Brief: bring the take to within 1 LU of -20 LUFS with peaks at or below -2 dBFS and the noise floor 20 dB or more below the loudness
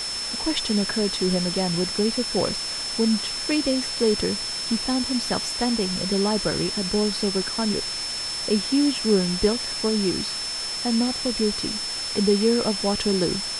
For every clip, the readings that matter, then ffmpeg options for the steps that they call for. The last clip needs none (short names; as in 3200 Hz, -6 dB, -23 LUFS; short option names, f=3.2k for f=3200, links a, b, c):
steady tone 5300 Hz; tone level -28 dBFS; noise floor -30 dBFS; noise floor target -43 dBFS; loudness -23.0 LUFS; peak -8.0 dBFS; loudness target -20.0 LUFS
-> -af "bandreject=f=5.3k:w=30"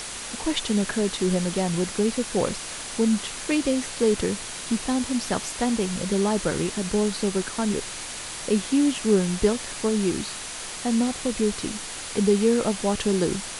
steady tone none; noise floor -35 dBFS; noise floor target -45 dBFS
-> -af "afftdn=nr=10:nf=-35"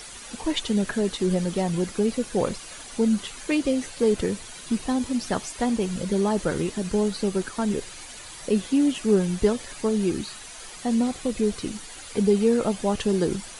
noise floor -41 dBFS; noise floor target -45 dBFS
-> -af "afftdn=nr=6:nf=-41"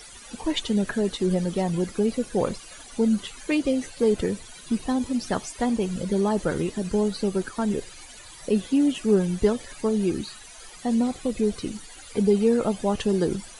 noise floor -45 dBFS; noise floor target -46 dBFS
-> -af "afftdn=nr=6:nf=-45"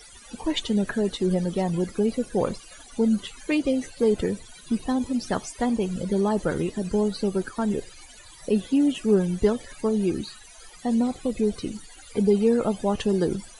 noise floor -48 dBFS; loudness -25.5 LUFS; peak -8.5 dBFS; loudness target -20.0 LUFS
-> -af "volume=5.5dB"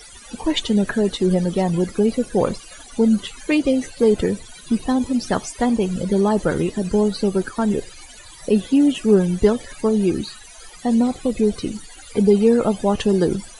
loudness -20.0 LUFS; peak -3.0 dBFS; noise floor -42 dBFS